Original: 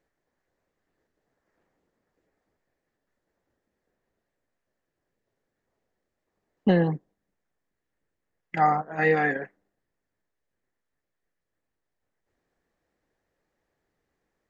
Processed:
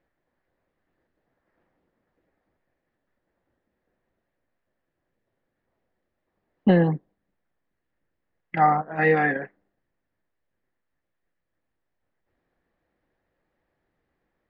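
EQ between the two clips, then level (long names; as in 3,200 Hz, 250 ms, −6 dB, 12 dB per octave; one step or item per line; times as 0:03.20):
high-frequency loss of the air 360 metres
high-shelf EQ 4,000 Hz +9.5 dB
notch filter 430 Hz, Q 13
+3.5 dB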